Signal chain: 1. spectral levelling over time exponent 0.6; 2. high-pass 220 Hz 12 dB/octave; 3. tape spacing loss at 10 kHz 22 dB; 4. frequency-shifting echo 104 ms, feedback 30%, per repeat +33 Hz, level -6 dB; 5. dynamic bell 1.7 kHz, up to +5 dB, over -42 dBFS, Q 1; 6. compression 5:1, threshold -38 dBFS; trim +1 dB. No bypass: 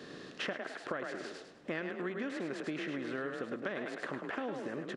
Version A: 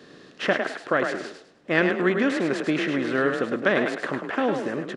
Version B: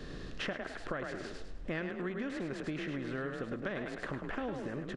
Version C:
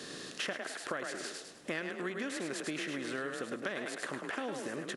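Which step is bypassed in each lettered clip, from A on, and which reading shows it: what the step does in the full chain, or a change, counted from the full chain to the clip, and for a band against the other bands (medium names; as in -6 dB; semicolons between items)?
6, mean gain reduction 11.0 dB; 2, 125 Hz band +7.0 dB; 3, 8 kHz band +13.5 dB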